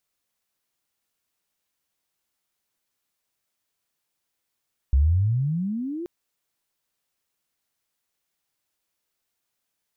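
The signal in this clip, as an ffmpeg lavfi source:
ffmpeg -f lavfi -i "aevalsrc='pow(10,(-14-15*t/1.13)/20)*sin(2*PI*63.6*1.13/(30*log(2)/12)*(exp(30*log(2)/12*t/1.13)-1))':duration=1.13:sample_rate=44100" out.wav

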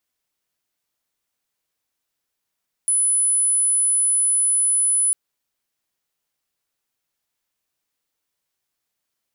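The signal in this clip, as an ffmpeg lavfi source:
ffmpeg -f lavfi -i "aevalsrc='0.168*sin(2*PI*10000*t)':duration=2.25:sample_rate=44100" out.wav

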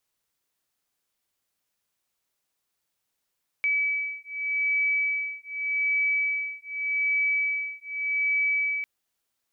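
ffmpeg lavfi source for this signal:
ffmpeg -f lavfi -i "aevalsrc='0.0447*(sin(2*PI*2290*t)+sin(2*PI*2290.84*t))':duration=5.2:sample_rate=44100" out.wav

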